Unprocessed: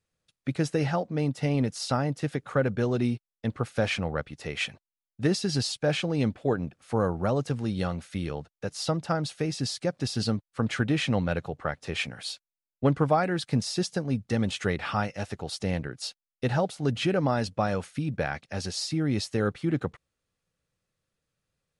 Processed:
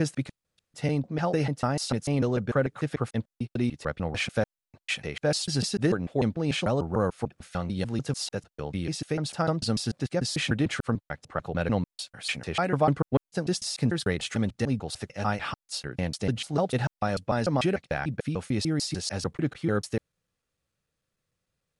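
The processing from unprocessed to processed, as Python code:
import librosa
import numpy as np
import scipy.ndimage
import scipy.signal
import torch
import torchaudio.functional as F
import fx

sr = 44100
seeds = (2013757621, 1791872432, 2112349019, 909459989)

y = fx.block_reorder(x, sr, ms=148.0, group=5)
y = fx.dynamic_eq(y, sr, hz=9300.0, q=1.3, threshold_db=-51.0, ratio=4.0, max_db=4)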